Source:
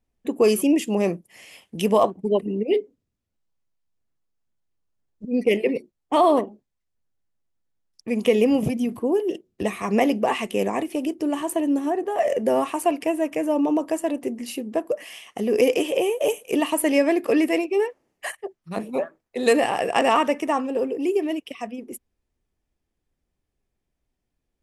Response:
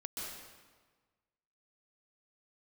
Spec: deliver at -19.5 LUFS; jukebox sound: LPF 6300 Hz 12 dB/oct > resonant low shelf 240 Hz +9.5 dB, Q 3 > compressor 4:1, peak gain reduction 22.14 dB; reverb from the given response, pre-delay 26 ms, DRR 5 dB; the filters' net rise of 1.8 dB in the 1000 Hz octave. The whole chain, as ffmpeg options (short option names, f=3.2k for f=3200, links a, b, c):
-filter_complex "[0:a]equalizer=f=1k:t=o:g=3.5,asplit=2[a][b];[1:a]atrim=start_sample=2205,adelay=26[c];[b][c]afir=irnorm=-1:irlink=0,volume=-5dB[d];[a][d]amix=inputs=2:normalize=0,lowpass=6.3k,lowshelf=f=240:t=q:w=3:g=9.5,acompressor=threshold=-34dB:ratio=4,volume=15.5dB"